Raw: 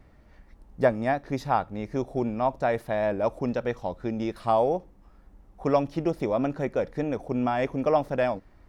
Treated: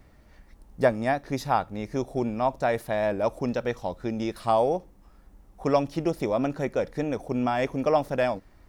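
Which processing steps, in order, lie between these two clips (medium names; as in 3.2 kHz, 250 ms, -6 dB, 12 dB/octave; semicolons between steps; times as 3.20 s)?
treble shelf 4.4 kHz +9.5 dB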